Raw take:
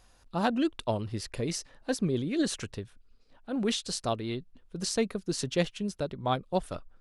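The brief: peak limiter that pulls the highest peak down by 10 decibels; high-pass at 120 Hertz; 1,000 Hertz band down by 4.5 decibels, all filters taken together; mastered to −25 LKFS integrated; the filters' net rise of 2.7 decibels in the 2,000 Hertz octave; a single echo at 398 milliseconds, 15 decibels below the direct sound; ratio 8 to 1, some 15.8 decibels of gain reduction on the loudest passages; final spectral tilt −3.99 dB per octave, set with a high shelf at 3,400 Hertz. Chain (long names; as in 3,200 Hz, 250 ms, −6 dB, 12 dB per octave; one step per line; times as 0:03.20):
high-pass filter 120 Hz
parametric band 1,000 Hz −8 dB
parametric band 2,000 Hz +4.5 dB
high-shelf EQ 3,400 Hz +4.5 dB
downward compressor 8 to 1, threshold −40 dBFS
brickwall limiter −34.5 dBFS
single-tap delay 398 ms −15 dB
level +21 dB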